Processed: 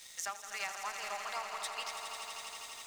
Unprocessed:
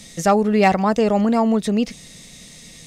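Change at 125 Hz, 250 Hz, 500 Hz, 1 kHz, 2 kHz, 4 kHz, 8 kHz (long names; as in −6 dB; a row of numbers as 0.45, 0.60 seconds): below −40 dB, below −40 dB, −29.5 dB, −19.0 dB, −12.0 dB, −7.5 dB, −6.5 dB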